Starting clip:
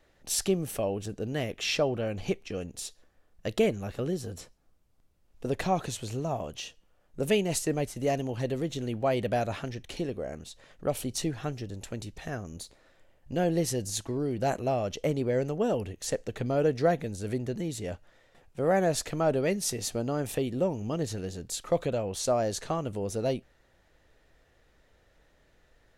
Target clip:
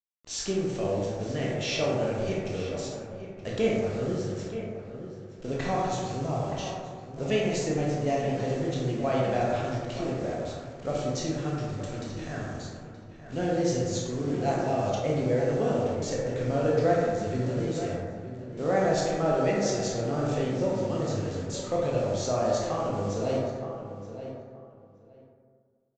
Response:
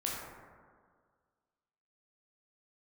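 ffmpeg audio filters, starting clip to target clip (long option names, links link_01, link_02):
-filter_complex "[0:a]aresample=16000,acrusher=bits=7:mix=0:aa=0.000001,aresample=44100,asplit=2[link_01][link_02];[link_02]adelay=924,lowpass=frequency=2600:poles=1,volume=-10.5dB,asplit=2[link_03][link_04];[link_04]adelay=924,lowpass=frequency=2600:poles=1,volume=0.18[link_05];[link_01][link_03][link_05]amix=inputs=3:normalize=0[link_06];[1:a]atrim=start_sample=2205[link_07];[link_06][link_07]afir=irnorm=-1:irlink=0,volume=-2.5dB"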